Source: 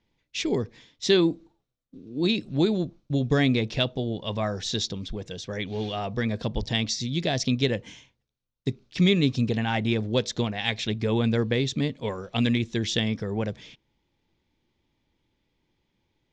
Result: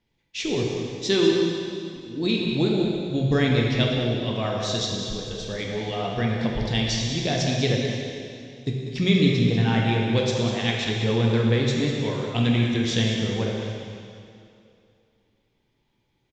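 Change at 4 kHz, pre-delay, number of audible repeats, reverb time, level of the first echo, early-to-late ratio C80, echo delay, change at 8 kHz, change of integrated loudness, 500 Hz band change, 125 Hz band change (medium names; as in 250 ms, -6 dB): +2.5 dB, 4 ms, 1, 2.6 s, -8.5 dB, 1.0 dB, 194 ms, +2.5 dB, +2.5 dB, +3.0 dB, +4.5 dB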